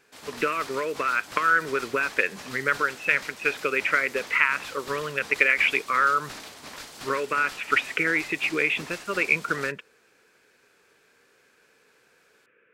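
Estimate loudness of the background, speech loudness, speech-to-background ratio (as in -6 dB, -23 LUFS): -40.0 LUFS, -24.5 LUFS, 15.5 dB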